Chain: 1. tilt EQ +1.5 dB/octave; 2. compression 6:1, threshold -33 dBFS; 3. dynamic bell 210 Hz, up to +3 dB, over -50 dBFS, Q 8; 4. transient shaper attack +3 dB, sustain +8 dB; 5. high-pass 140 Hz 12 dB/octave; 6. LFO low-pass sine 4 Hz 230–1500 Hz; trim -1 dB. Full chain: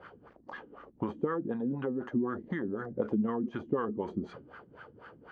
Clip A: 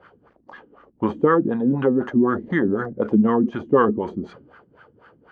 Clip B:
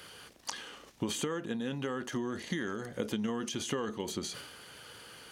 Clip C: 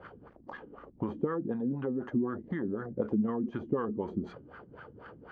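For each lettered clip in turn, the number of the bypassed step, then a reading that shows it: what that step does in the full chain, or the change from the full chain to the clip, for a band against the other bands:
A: 2, mean gain reduction 7.0 dB; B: 6, 2 kHz band +6.0 dB; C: 1, 125 Hz band +3.0 dB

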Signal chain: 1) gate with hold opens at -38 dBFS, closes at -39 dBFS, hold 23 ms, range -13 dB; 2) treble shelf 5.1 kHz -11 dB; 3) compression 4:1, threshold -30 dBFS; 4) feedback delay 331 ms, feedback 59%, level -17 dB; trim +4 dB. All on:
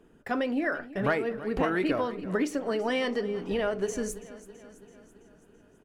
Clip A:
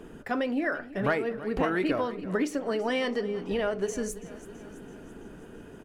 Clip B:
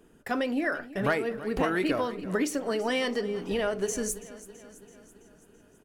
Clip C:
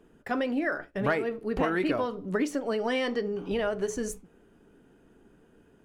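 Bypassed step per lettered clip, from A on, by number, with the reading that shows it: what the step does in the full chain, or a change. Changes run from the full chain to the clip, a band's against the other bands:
1, momentary loudness spread change +11 LU; 2, 8 kHz band +7.0 dB; 4, echo-to-direct -15.0 dB to none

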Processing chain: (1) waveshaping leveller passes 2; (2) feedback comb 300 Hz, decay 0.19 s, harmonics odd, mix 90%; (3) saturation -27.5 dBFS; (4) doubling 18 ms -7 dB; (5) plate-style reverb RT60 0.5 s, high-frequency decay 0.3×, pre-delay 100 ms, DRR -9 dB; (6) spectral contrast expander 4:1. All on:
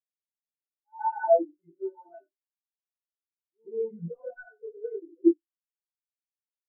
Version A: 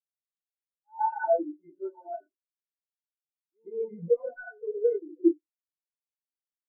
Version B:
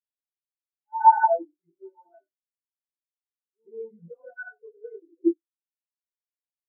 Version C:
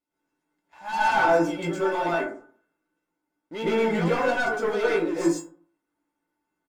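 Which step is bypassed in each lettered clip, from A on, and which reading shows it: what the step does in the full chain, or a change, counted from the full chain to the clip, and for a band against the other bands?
4, 125 Hz band -3.0 dB; 3, distortion -9 dB; 6, 125 Hz band +8.0 dB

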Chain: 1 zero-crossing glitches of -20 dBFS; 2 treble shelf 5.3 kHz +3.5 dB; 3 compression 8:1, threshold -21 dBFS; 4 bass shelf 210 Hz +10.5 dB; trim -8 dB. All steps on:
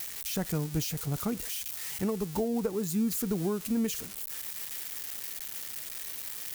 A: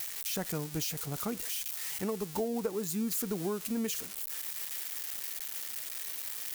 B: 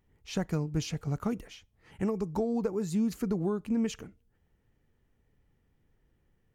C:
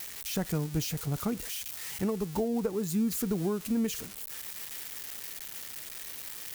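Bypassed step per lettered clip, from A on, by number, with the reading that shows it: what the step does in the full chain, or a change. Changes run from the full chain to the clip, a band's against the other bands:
4, 125 Hz band -6.0 dB; 1, distortion -7 dB; 2, 8 kHz band -1.5 dB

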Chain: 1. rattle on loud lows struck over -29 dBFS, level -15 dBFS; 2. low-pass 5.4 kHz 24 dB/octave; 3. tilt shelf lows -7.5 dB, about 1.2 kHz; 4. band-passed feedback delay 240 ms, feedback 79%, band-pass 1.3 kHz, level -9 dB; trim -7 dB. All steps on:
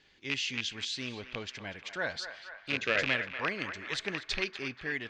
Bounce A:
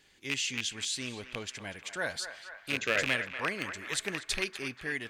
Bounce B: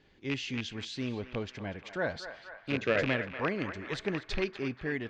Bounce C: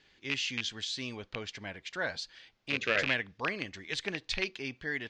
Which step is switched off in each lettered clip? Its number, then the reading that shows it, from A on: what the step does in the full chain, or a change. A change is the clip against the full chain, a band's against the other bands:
2, 8 kHz band +8.5 dB; 3, 8 kHz band -10.0 dB; 4, echo-to-direct -7.5 dB to none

